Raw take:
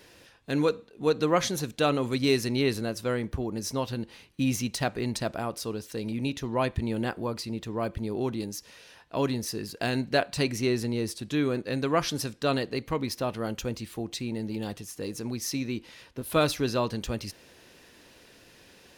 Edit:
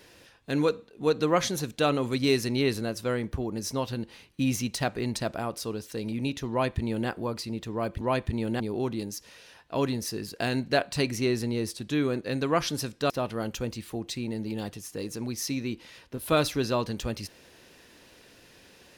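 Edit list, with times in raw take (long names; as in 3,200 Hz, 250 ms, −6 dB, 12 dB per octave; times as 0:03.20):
0:06.50–0:07.09: duplicate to 0:08.01
0:12.51–0:13.14: remove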